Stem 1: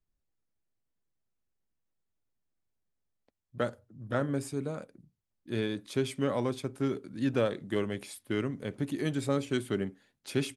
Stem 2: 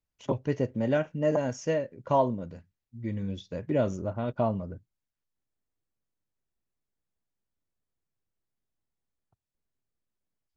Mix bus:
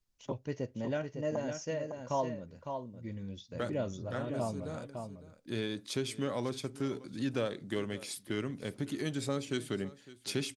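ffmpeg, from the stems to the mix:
ffmpeg -i stem1.wav -i stem2.wav -filter_complex "[0:a]acompressor=threshold=-40dB:ratio=1.5,volume=0.5dB,asplit=2[link_01][link_02];[link_02]volume=-18.5dB[link_03];[1:a]volume=-9dB,asplit=3[link_04][link_05][link_06];[link_05]volume=-6.5dB[link_07];[link_06]apad=whole_len=465715[link_08];[link_01][link_08]sidechaincompress=threshold=-40dB:ratio=8:attack=32:release=390[link_09];[link_03][link_07]amix=inputs=2:normalize=0,aecho=0:1:556:1[link_10];[link_09][link_04][link_10]amix=inputs=3:normalize=0,equalizer=frequency=5300:width_type=o:width=1.4:gain=7.5" out.wav

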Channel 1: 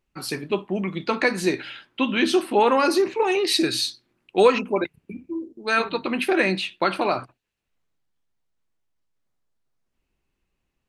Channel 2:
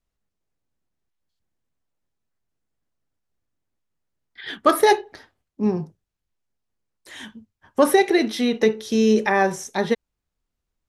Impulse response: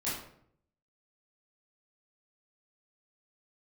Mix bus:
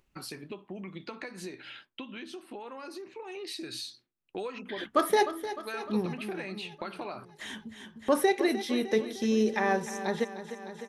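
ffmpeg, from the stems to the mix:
-filter_complex "[0:a]agate=range=-33dB:threshold=-39dB:ratio=3:detection=peak,acompressor=threshold=-25dB:ratio=3,volume=-5.5dB,afade=type=out:start_time=1.74:duration=0.58:silence=0.473151,afade=type=in:start_time=3.24:duration=0.7:silence=0.251189[link_01];[1:a]agate=range=-23dB:threshold=-44dB:ratio=16:detection=peak,adelay=300,volume=-8.5dB,asplit=2[link_02][link_03];[link_03]volume=-12.5dB,aecho=0:1:304|608|912|1216|1520|1824|2128|2432:1|0.55|0.303|0.166|0.0915|0.0503|0.0277|0.0152[link_04];[link_01][link_02][link_04]amix=inputs=3:normalize=0,acompressor=mode=upward:threshold=-33dB:ratio=2.5"

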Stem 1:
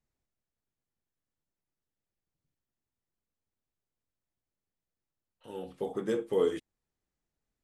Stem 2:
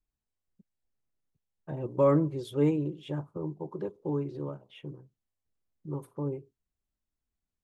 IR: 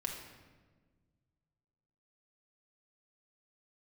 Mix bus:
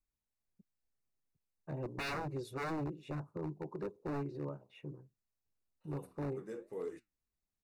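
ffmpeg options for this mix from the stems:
-filter_complex "[0:a]flanger=delay=4.3:depth=8.5:regen=73:speed=1.7:shape=triangular,adelay=400,volume=-10dB[link_01];[1:a]volume=-4.5dB[link_02];[link_01][link_02]amix=inputs=2:normalize=0,aeval=exprs='0.0224*(abs(mod(val(0)/0.0224+3,4)-2)-1)':channel_layout=same,asuperstop=centerf=3200:order=4:qfactor=4.5"

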